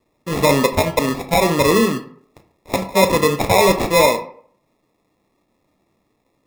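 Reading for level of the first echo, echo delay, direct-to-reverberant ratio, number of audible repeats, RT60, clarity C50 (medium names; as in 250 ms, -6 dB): no echo, no echo, 7.0 dB, no echo, 0.55 s, 12.0 dB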